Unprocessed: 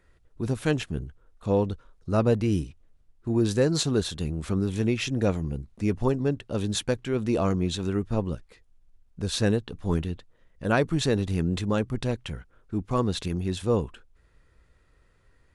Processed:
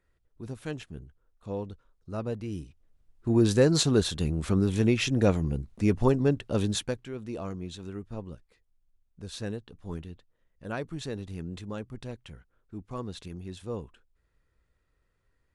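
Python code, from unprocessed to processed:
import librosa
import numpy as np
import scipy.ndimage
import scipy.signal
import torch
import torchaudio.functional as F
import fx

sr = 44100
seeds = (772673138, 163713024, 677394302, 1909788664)

y = fx.gain(x, sr, db=fx.line((2.54, -11.0), (3.3, 1.5), (6.62, 1.5), (7.16, -11.5)))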